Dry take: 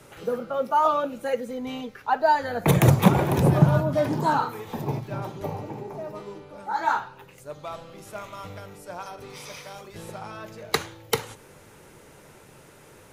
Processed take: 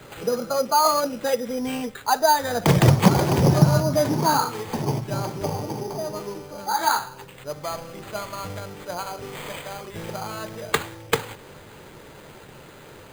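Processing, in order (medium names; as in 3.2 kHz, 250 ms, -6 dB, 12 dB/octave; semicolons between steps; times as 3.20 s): in parallel at -0.5 dB: compression, threshold -29 dBFS, peak gain reduction 18 dB; on the sum: sample-rate reducer 5.5 kHz, jitter 0%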